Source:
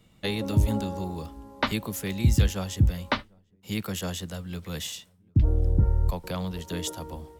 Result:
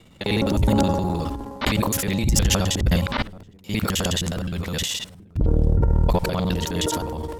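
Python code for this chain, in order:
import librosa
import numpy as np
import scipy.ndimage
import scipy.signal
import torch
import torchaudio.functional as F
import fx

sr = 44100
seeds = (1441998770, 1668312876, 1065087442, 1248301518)

p1 = fx.local_reverse(x, sr, ms=52.0)
p2 = fx.high_shelf(p1, sr, hz=11000.0, db=-8.0)
p3 = fx.over_compress(p2, sr, threshold_db=-25.0, ratio=-0.5)
p4 = p2 + F.gain(torch.from_numpy(p3), 1.0).numpy()
p5 = fx.transient(p4, sr, attack_db=-8, sustain_db=10)
y = fx.buffer_crackle(p5, sr, first_s=0.46, period_s=0.98, block=128, kind='repeat')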